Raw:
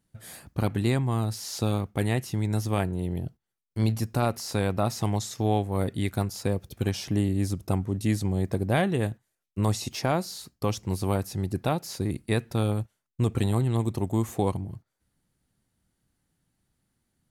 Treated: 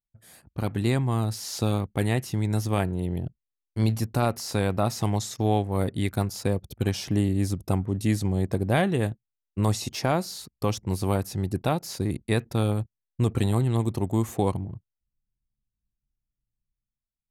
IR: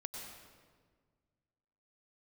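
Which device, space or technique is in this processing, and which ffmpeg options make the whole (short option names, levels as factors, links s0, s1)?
voice memo with heavy noise removal: -af "anlmdn=0.00631,dynaudnorm=f=140:g=9:m=3.76,volume=0.355"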